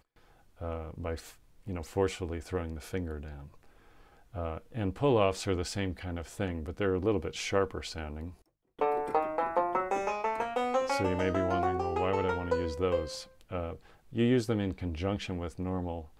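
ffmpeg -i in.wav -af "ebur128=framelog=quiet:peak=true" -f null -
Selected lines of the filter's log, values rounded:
Integrated loudness:
  I:         -32.3 LUFS
  Threshold: -42.9 LUFS
Loudness range:
  LRA:         6.9 LU
  Threshold: -52.6 LUFS
  LRA low:   -37.4 LUFS
  LRA high:  -30.5 LUFS
True peak:
  Peak:      -12.5 dBFS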